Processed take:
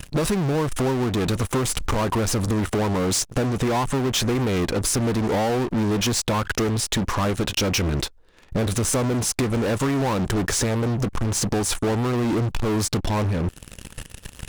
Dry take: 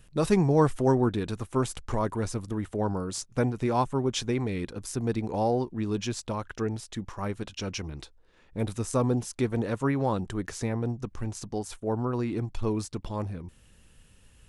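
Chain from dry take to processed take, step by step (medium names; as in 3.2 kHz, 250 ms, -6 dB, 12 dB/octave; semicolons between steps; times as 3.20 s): in parallel at -8 dB: fuzz box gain 43 dB, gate -52 dBFS; on the sum: compression 6:1, threshold -27 dBFS, peak gain reduction 13.5 dB; trim +6 dB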